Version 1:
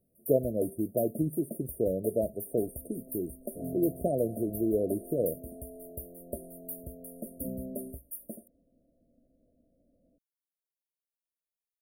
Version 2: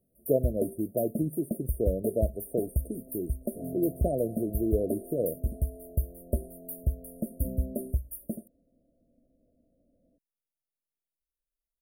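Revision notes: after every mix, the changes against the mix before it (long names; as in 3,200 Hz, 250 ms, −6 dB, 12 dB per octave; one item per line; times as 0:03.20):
first sound: remove high-pass filter 610 Hz 6 dB per octave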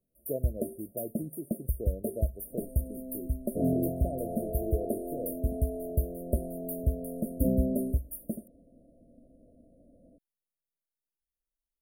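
speech −9.0 dB
second sound +10.5 dB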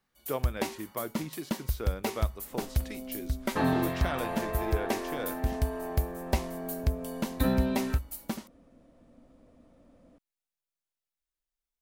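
master: remove linear-phase brick-wall band-stop 710–8,700 Hz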